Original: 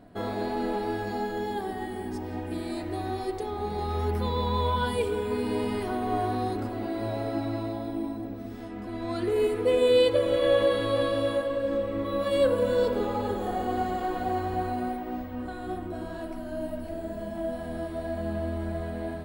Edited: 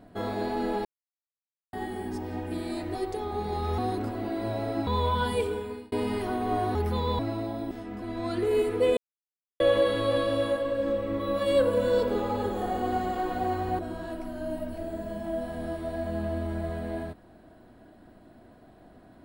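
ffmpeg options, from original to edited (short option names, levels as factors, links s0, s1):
-filter_complex "[0:a]asplit=13[s0][s1][s2][s3][s4][s5][s6][s7][s8][s9][s10][s11][s12];[s0]atrim=end=0.85,asetpts=PTS-STARTPTS,afade=t=out:st=0.846:d=0.004:c=hsin[s13];[s1]atrim=start=0.85:end=1.73,asetpts=PTS-STARTPTS,volume=0[s14];[s2]atrim=start=1.73:end=2.952,asetpts=PTS-STARTPTS,afade=t=in:d=0.004:c=hsin[s15];[s3]atrim=start=3.208:end=4.042[s16];[s4]atrim=start=6.358:end=7.452[s17];[s5]atrim=start=4.478:end=5.53,asetpts=PTS-STARTPTS,afade=t=out:st=0.542:d=0.51[s18];[s6]atrim=start=5.53:end=6.362,asetpts=PTS-STARTPTS,afade=t=in:d=0.004:c=hsin[s19];[s7]atrim=start=4.038:end=4.482[s20];[s8]atrim=start=7.448:end=7.972[s21];[s9]atrim=start=8.558:end=9.82,asetpts=PTS-STARTPTS,afade=t=out:st=1.258:d=0.004:c=hsin[s22];[s10]atrim=start=9.82:end=10.45,asetpts=PTS-STARTPTS,volume=0[s23];[s11]atrim=start=10.45:end=14.642,asetpts=PTS-STARTPTS,afade=t=in:d=0.004:c=hsin[s24];[s12]atrim=start=15.898[s25];[s13][s14][s15]concat=n=3:v=0:a=1[s26];[s26][s16]acrossfade=d=0.004:c1=hsin:c2=hsin[s27];[s27][s17]acrossfade=d=0.004:c1=hsin:c2=hsin[s28];[s18][s19]concat=n=2:v=0:a=1[s29];[s28][s29]acrossfade=d=0.004:c1=hsin:c2=hsin[s30];[s30][s20]acrossfade=d=0.004:c1=hsin:c2=hsin[s31];[s31][s21]acrossfade=d=0.004:c1=hsin:c2=hsin[s32];[s22][s23][s24]concat=n=3:v=0:a=1[s33];[s32][s33]acrossfade=d=0.004:c1=hsin:c2=hsin[s34];[s34][s25]acrossfade=d=0.004:c1=hsin:c2=hsin"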